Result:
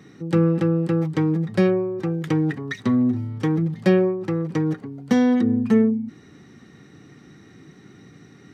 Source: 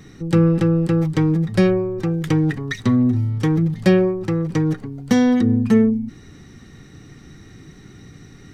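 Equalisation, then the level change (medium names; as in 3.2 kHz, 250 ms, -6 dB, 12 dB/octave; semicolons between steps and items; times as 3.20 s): high-pass 160 Hz 12 dB/octave; treble shelf 3.7 kHz -8 dB; -1.5 dB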